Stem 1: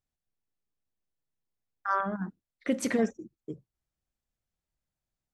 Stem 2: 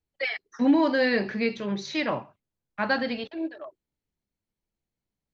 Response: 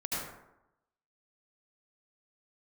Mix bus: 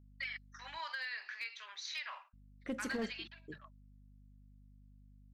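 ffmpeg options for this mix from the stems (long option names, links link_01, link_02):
-filter_complex "[0:a]aeval=exprs='val(0)+0.00398*(sin(2*PI*50*n/s)+sin(2*PI*2*50*n/s)/2+sin(2*PI*3*50*n/s)/3+sin(2*PI*4*50*n/s)/4+sin(2*PI*5*50*n/s)/5)':channel_layout=same,volume=-11dB,asplit=3[link_01][link_02][link_03];[link_01]atrim=end=0.78,asetpts=PTS-STARTPTS,afade=type=out:start_time=0.776:duration=0.004:curve=hsin[link_04];[link_02]atrim=start=0.78:end=2.33,asetpts=PTS-STARTPTS,volume=0[link_05];[link_03]atrim=start=2.33,asetpts=PTS-STARTPTS,afade=type=in:duration=0.004:curve=hsin[link_06];[link_04][link_05][link_06]concat=n=3:v=0:a=1[link_07];[1:a]highpass=frequency=1200:width=0.5412,highpass=frequency=1200:width=1.3066,agate=range=-12dB:threshold=-51dB:ratio=16:detection=peak,acompressor=threshold=-33dB:ratio=16,volume=-5dB[link_08];[link_07][link_08]amix=inputs=2:normalize=0,asoftclip=type=hard:threshold=-31.5dB"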